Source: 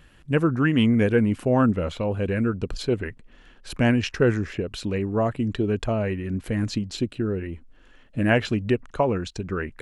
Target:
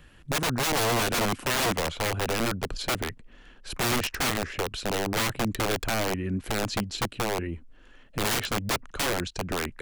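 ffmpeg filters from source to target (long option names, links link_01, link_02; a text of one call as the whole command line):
ffmpeg -i in.wav -filter_complex "[0:a]acrossover=split=210|3000[link_01][link_02][link_03];[link_01]acompressor=threshold=-29dB:ratio=6[link_04];[link_04][link_02][link_03]amix=inputs=3:normalize=0,aeval=exprs='(mod(10.6*val(0)+1,2)-1)/10.6':channel_layout=same" out.wav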